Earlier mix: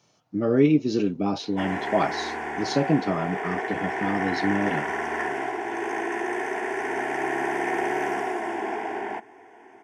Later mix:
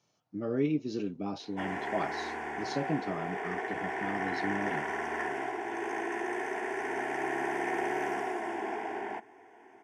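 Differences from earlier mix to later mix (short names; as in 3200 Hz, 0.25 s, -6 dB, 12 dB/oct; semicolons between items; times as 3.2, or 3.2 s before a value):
speech -10.5 dB; background -6.0 dB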